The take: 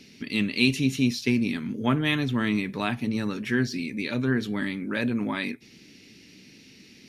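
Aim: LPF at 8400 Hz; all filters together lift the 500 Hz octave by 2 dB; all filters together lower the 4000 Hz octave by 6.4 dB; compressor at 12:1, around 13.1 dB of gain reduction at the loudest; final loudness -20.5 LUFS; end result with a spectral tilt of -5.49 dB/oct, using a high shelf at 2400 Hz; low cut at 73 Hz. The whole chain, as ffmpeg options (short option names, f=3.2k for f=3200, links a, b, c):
-af "highpass=73,lowpass=8.4k,equalizer=f=500:t=o:g=3,highshelf=f=2.4k:g=-5,equalizer=f=4k:t=o:g=-3.5,acompressor=threshold=-31dB:ratio=12,volume=15.5dB"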